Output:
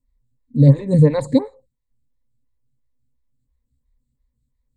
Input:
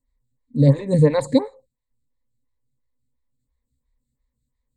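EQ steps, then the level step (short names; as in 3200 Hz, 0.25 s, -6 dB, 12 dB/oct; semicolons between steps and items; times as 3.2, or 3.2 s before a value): low shelf 300 Hz +9 dB; -3.0 dB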